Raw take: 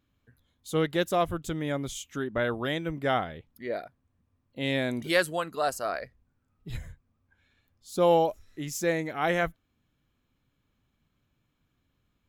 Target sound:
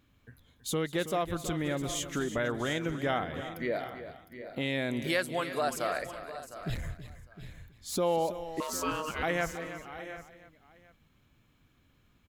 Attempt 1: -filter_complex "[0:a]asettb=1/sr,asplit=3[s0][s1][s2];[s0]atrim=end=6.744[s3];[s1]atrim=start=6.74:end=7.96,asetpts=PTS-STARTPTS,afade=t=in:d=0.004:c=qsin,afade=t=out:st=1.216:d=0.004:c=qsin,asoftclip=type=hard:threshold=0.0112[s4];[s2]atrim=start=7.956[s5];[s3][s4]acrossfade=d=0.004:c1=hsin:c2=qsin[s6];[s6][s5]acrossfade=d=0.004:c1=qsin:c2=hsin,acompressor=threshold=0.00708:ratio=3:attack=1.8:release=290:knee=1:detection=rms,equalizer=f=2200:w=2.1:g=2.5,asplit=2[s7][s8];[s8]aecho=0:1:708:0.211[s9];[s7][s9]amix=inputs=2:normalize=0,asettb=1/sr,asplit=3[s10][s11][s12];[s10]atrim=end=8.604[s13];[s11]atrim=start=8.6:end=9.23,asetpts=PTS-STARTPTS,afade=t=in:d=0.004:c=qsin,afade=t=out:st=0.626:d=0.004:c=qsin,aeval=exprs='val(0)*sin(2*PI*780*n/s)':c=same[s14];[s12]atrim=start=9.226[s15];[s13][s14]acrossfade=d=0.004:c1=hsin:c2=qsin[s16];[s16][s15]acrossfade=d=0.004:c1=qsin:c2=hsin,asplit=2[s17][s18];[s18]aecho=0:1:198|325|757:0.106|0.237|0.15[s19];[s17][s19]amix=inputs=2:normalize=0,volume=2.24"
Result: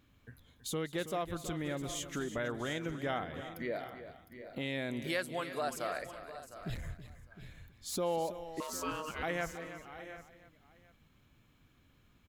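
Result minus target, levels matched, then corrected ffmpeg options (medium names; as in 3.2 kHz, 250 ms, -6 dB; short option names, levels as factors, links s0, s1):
compression: peak gain reduction +5.5 dB
-filter_complex "[0:a]asettb=1/sr,asplit=3[s0][s1][s2];[s0]atrim=end=6.744[s3];[s1]atrim=start=6.74:end=7.96,asetpts=PTS-STARTPTS,afade=t=in:d=0.004:c=qsin,afade=t=out:st=1.216:d=0.004:c=qsin,asoftclip=type=hard:threshold=0.0112[s4];[s2]atrim=start=7.956[s5];[s3][s4]acrossfade=d=0.004:c1=hsin:c2=qsin[s6];[s6][s5]acrossfade=d=0.004:c1=qsin:c2=hsin,acompressor=threshold=0.0178:ratio=3:attack=1.8:release=290:knee=1:detection=rms,equalizer=f=2200:w=2.1:g=2.5,asplit=2[s7][s8];[s8]aecho=0:1:708:0.211[s9];[s7][s9]amix=inputs=2:normalize=0,asettb=1/sr,asplit=3[s10][s11][s12];[s10]atrim=end=8.604[s13];[s11]atrim=start=8.6:end=9.23,asetpts=PTS-STARTPTS,afade=t=in:d=0.004:c=qsin,afade=t=out:st=0.626:d=0.004:c=qsin,aeval=exprs='val(0)*sin(2*PI*780*n/s)':c=same[s14];[s12]atrim=start=9.226[s15];[s13][s14]acrossfade=d=0.004:c1=hsin:c2=qsin[s16];[s16][s15]acrossfade=d=0.004:c1=qsin:c2=hsin,asplit=2[s17][s18];[s18]aecho=0:1:198|325|757:0.106|0.237|0.15[s19];[s17][s19]amix=inputs=2:normalize=0,volume=2.24"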